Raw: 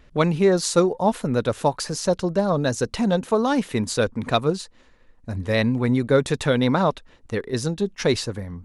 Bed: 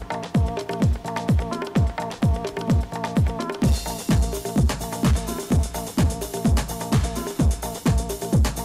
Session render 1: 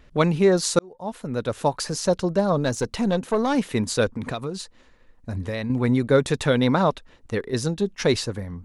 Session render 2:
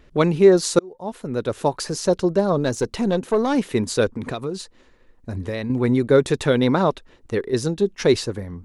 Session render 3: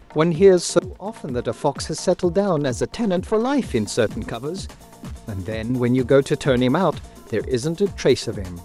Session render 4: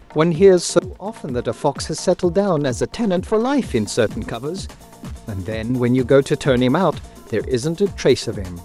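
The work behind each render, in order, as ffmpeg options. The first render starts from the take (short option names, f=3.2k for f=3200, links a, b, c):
-filter_complex "[0:a]asettb=1/sr,asplit=3[a][b][c];[a]atrim=end=2.584[d];[b]atrim=start=2.58:end=3.55,asetpts=PTS-STARTPTS,afade=t=in:d=0.004:c=qsin,afade=t=out:st=0.966:d=0.004:c=qsin,aeval=exprs='(tanh(4.47*val(0)+0.35)-tanh(0.35))/4.47':c=same[e];[c]atrim=start=3.546[f];[d][e]acrossfade=d=0.004:c1=hsin:c2=qsin[g];[g][f]acrossfade=d=0.004:c1=qsin:c2=hsin,asettb=1/sr,asplit=3[h][i][j];[h]atrim=end=4.164[k];[i]atrim=start=4.16:end=5.7,asetpts=PTS-STARTPTS,afade=t=in:d=0.004:c=qsin,afade=t=out:st=1.536:d=0.004:c=qsin,acompressor=threshold=-24dB:ratio=10:attack=3.2:release=140:knee=1:detection=peak[l];[j]atrim=start=5.696[m];[k][l]acrossfade=d=0.004:c1=hsin:c2=qsin[n];[n][m]acrossfade=d=0.004:c1=qsin:c2=hsin,asplit=2[o][p];[o]atrim=end=0.79,asetpts=PTS-STARTPTS,afade=t=out:st=0.786:d=0.004:c=hsin[q];[p]atrim=start=0.79,asetpts=PTS-STARTPTS,afade=t=in:d=1.03[r];[q][r]concat=n=2:v=0:a=1"
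-af "equalizer=f=370:w=2.4:g=6.5"
-filter_complex "[1:a]volume=-15.5dB[a];[0:a][a]amix=inputs=2:normalize=0"
-af "volume=2dB,alimiter=limit=-2dB:level=0:latency=1"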